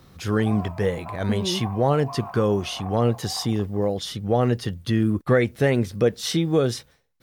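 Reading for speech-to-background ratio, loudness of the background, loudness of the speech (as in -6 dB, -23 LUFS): 16.0 dB, -39.5 LUFS, -23.5 LUFS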